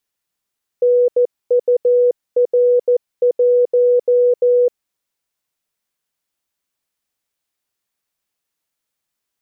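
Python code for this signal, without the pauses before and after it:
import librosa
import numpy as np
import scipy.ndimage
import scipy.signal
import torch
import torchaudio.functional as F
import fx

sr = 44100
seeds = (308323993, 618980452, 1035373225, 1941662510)

y = fx.morse(sr, text='NUR1', wpm=14, hz=490.0, level_db=-9.5)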